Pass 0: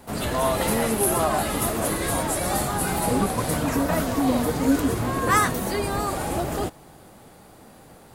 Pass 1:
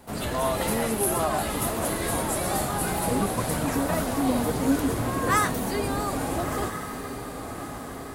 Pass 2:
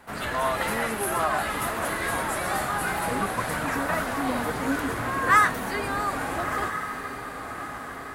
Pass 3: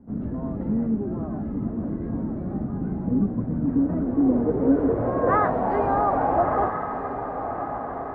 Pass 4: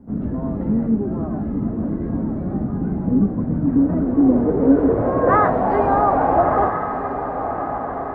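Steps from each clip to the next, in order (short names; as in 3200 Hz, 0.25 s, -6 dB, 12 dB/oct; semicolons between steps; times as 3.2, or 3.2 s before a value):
diffused feedback echo 1.317 s, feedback 50%, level -9 dB; gain -3 dB
bell 1600 Hz +13.5 dB 1.8 oct; gain -6 dB
low-pass sweep 240 Hz -> 760 Hz, 3.6–5.71; gain +5 dB
de-hum 117.2 Hz, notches 28; gain +5.5 dB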